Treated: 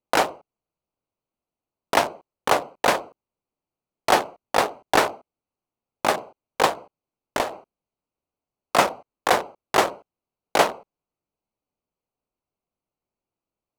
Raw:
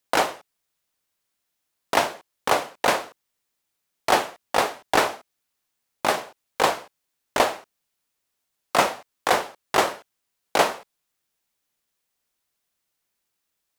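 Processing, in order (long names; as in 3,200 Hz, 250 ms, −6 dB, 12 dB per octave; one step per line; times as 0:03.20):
adaptive Wiener filter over 25 samples
0:06.66–0:07.53: downward compressor 4 to 1, threshold −22 dBFS, peak gain reduction 8 dB
level +1.5 dB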